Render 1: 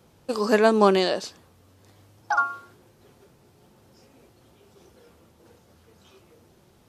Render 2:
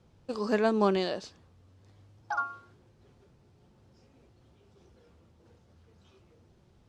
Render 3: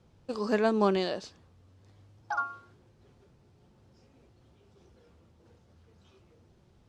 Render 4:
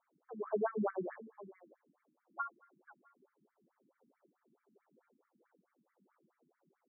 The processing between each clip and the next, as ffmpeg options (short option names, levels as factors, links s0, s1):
-af "lowpass=6500,lowshelf=f=140:g=12,volume=0.355"
-af anull
-af "aecho=1:1:566:0.133,afftfilt=real='re*between(b*sr/1024,230*pow(1700/230,0.5+0.5*sin(2*PI*4.6*pts/sr))/1.41,230*pow(1700/230,0.5+0.5*sin(2*PI*4.6*pts/sr))*1.41)':imag='im*between(b*sr/1024,230*pow(1700/230,0.5+0.5*sin(2*PI*4.6*pts/sr))/1.41,230*pow(1700/230,0.5+0.5*sin(2*PI*4.6*pts/sr))*1.41)':win_size=1024:overlap=0.75,volume=0.631"